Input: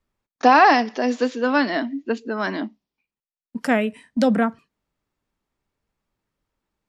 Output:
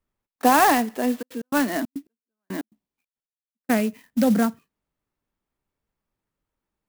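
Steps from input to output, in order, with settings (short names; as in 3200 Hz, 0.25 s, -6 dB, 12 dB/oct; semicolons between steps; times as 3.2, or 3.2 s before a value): dynamic EQ 200 Hz, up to +5 dB, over -32 dBFS, Q 1.1; 1.21–3.69 step gate ".x.xxx.x..." 138 bpm -60 dB; clock jitter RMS 0.045 ms; gain -4 dB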